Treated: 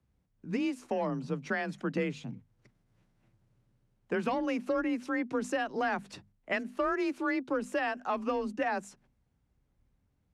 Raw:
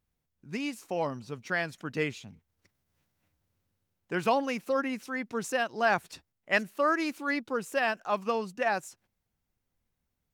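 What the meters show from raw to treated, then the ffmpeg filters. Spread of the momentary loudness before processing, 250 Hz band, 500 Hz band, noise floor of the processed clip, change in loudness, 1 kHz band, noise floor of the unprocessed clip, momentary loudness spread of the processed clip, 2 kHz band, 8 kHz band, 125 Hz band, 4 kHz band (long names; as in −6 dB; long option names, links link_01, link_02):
8 LU, +2.0 dB, −2.0 dB, −75 dBFS, −2.5 dB, −3.5 dB, −83 dBFS, 6 LU, −4.5 dB, −6.5 dB, +0.5 dB, −6.0 dB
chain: -filter_complex "[0:a]acrossover=split=410|980|2800[link_01][link_02][link_03][link_04];[link_02]asoftclip=type=tanh:threshold=-32dB[link_05];[link_01][link_05][link_03][link_04]amix=inputs=4:normalize=0,afreqshift=29,lowshelf=frequency=320:gain=6,acompressor=threshold=-31dB:ratio=5,lowpass=frequency=11000:width=0.5412,lowpass=frequency=11000:width=1.3066,highshelf=frequency=3000:gain=-9.5,bandreject=frequency=50:width_type=h:width=6,bandreject=frequency=100:width_type=h:width=6,bandreject=frequency=150:width_type=h:width=6,bandreject=frequency=200:width_type=h:width=6,bandreject=frequency=250:width_type=h:width=6,volume=4dB"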